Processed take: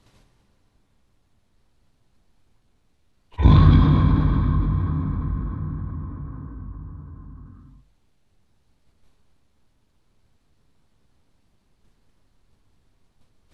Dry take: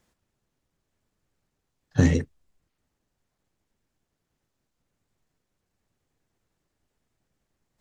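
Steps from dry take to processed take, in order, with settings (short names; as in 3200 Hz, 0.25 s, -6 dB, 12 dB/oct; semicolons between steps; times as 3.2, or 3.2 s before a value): low shelf 370 Hz +7 dB; expander -50 dBFS; speed mistake 78 rpm record played at 45 rpm; notches 50/100/150 Hz; plate-style reverb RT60 4 s, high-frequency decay 0.55×, DRR 2.5 dB; dynamic EQ 700 Hz, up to +5 dB, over -40 dBFS, Q 0.81; fast leveller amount 50%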